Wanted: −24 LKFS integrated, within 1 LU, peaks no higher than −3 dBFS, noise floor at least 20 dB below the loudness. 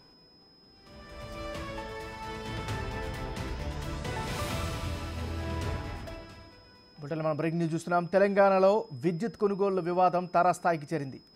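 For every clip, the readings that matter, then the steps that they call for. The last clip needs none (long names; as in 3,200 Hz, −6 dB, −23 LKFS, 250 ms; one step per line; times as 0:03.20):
interfering tone 5,100 Hz; level of the tone −58 dBFS; integrated loudness −30.0 LKFS; sample peak −12.0 dBFS; target loudness −24.0 LKFS
→ notch filter 5,100 Hz, Q 30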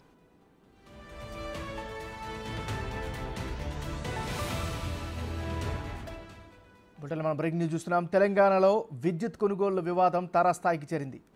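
interfering tone none found; integrated loudness −30.0 LKFS; sample peak −12.0 dBFS; target loudness −24.0 LKFS
→ level +6 dB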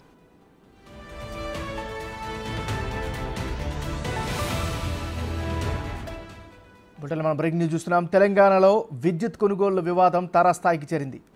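integrated loudness −24.0 LKFS; sample peak −6.0 dBFS; background noise floor −55 dBFS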